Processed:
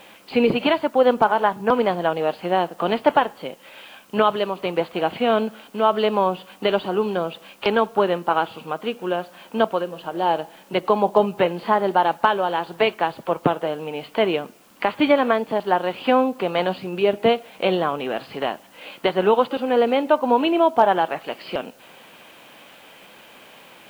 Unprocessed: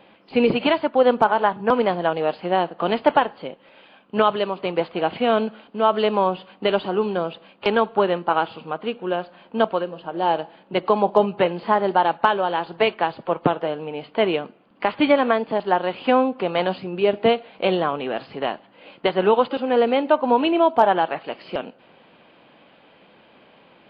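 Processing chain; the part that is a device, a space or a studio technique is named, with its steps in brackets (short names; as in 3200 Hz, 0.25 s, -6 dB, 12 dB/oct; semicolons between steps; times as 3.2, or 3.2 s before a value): noise-reduction cassette on a plain deck (mismatched tape noise reduction encoder only; wow and flutter 8.1 cents; white noise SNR 35 dB)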